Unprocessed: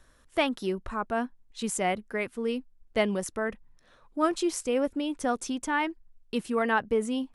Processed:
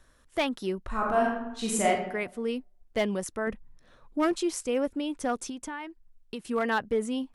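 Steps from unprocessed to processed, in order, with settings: 3.47–4.33 s: bass shelf 410 Hz +6.5 dB; 5.47–6.45 s: compression 12:1, threshold -33 dBFS, peak gain reduction 11 dB; overload inside the chain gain 18.5 dB; 0.87–1.87 s: reverb throw, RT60 0.89 s, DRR -3.5 dB; trim -1 dB

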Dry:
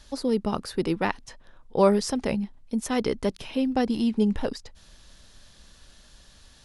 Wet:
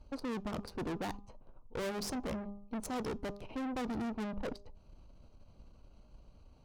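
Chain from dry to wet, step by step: local Wiener filter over 25 samples; valve stage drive 37 dB, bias 0.75; de-hum 202.1 Hz, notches 6; on a send: reverberation RT60 0.30 s, pre-delay 3 ms, DRR 20 dB; on the sum: trim +2 dB

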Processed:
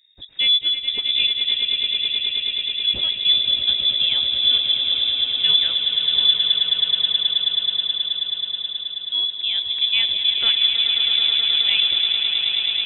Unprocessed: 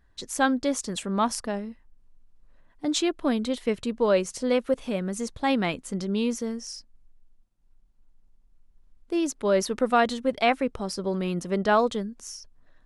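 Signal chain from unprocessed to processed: fifteen-band graphic EQ 250 Hz +10 dB, 630 Hz -11 dB, 2.5 kHz -11 dB; echo with a slow build-up 107 ms, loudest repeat 8, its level -9 dB; frequency inversion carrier 3.7 kHz

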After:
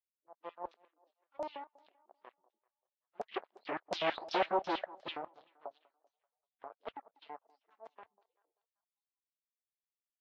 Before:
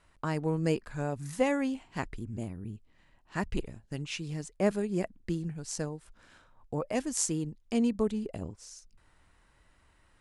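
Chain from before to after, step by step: delay that grows with frequency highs late, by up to 656 ms; Doppler pass-by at 4.12 s, 24 m/s, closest 1.8 m; FFT filter 150 Hz 0 dB, 370 Hz +11 dB, 1.5 kHz -26 dB, 4.1 kHz -2 dB, 9.6 kHz -27 dB; in parallel at -5 dB: fuzz box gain 49 dB, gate -57 dBFS; on the sum: LFO high-pass square 6.1 Hz 660–3400 Hz; distance through air 130 m; on a send: thinning echo 194 ms, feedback 45%, high-pass 170 Hz, level -21.5 dB; on the sum: LFO low-pass saw down 2.8 Hz 610–6100 Hz; trim -8.5 dB; Vorbis 48 kbps 44.1 kHz

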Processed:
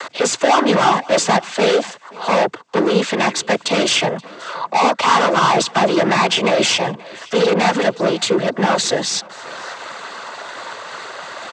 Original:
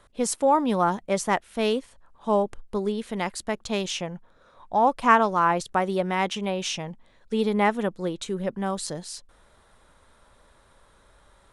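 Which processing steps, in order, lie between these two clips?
upward compressor, threshold -43 dBFS; bass shelf 260 Hz -7 dB; overdrive pedal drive 36 dB, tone 5.1 kHz, clips at -4 dBFS; noise-vocoded speech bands 16; on a send: delay 527 ms -23 dB; on the sum: trim -2.5 dB

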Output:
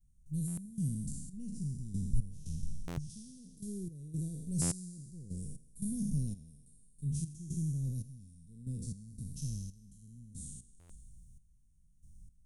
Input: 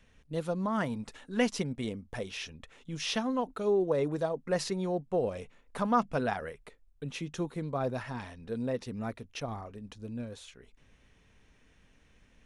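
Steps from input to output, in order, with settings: spectral sustain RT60 1.40 s; 1.33–3.10 s: tilt EQ -2 dB/octave; vibrato 0.54 Hz 37 cents; peaking EQ 110 Hz -6 dB 0.97 oct; thinning echo 84 ms, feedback 72%, level -12.5 dB; trance gate "..xx..xxxx..." 116 bpm -12 dB; Chebyshev band-stop 150–8600 Hz, order 3; buffer glitch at 0.47/2.87/4.61/10.79 s, samples 512, times 8; trim +8.5 dB

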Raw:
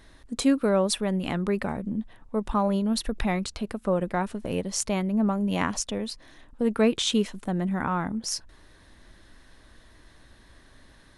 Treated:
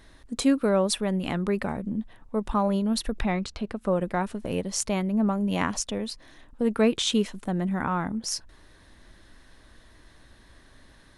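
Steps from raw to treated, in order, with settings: 3.20–3.81 s: distance through air 69 m

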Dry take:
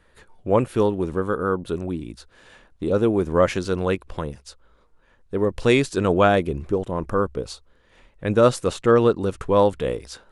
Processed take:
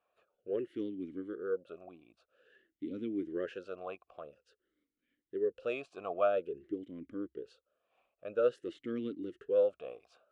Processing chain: talking filter a-i 0.5 Hz; trim -6 dB

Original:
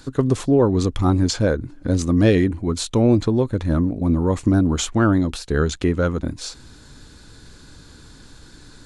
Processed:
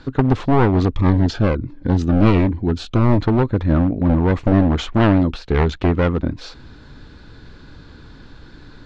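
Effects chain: one-sided wavefolder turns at -17.5 dBFS; Bessel low-pass 2.9 kHz, order 4; 0.92–3.21 s: Shepard-style phaser falling 1.4 Hz; trim +4 dB

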